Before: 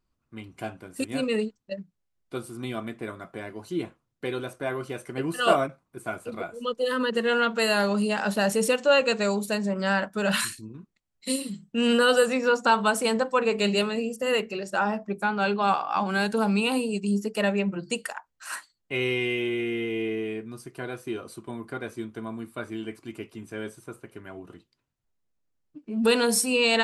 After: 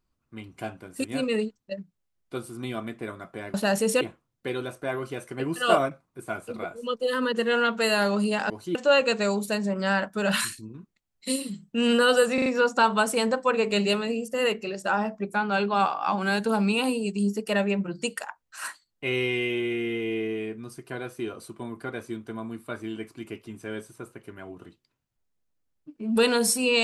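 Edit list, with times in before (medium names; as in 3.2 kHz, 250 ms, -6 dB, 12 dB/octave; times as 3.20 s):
3.54–3.79 s: swap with 8.28–8.75 s
12.34 s: stutter 0.04 s, 4 plays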